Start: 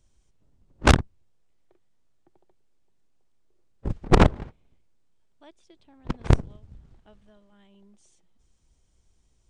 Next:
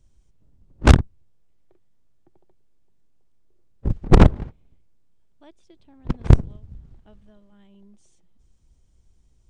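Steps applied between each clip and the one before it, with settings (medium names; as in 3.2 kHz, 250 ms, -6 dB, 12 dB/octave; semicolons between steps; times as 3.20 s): bass shelf 340 Hz +8.5 dB; trim -1.5 dB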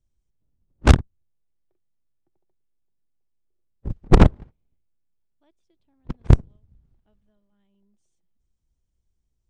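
upward expansion 1.5:1, over -36 dBFS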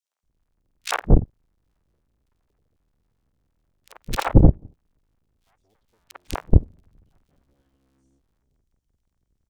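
cycle switcher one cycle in 3, inverted; three bands offset in time highs, mids, lows 50/230 ms, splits 660/2400 Hz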